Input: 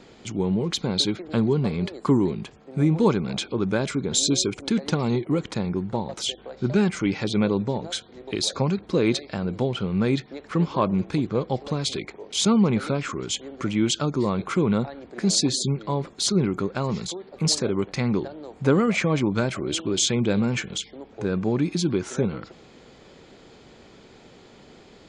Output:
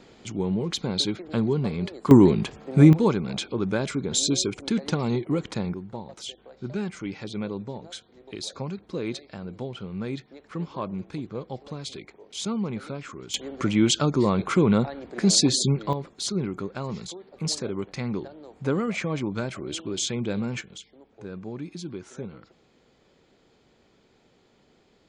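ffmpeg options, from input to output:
ffmpeg -i in.wav -af "asetnsamples=nb_out_samples=441:pad=0,asendcmd='2.11 volume volume 7dB;2.93 volume volume -2dB;5.74 volume volume -9.5dB;13.34 volume volume 2dB;15.93 volume volume -6dB;20.61 volume volume -12.5dB',volume=-2.5dB" out.wav

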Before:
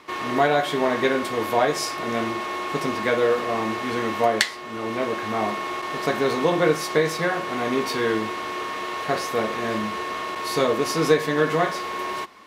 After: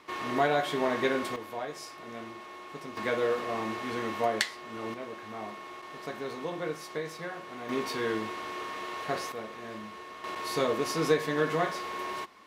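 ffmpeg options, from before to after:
ffmpeg -i in.wav -af "asetnsamples=nb_out_samples=441:pad=0,asendcmd='1.36 volume volume -16.5dB;2.97 volume volume -8dB;4.94 volume volume -15dB;7.69 volume volume -8dB;9.32 volume volume -15.5dB;10.24 volume volume -7dB',volume=-6.5dB" out.wav

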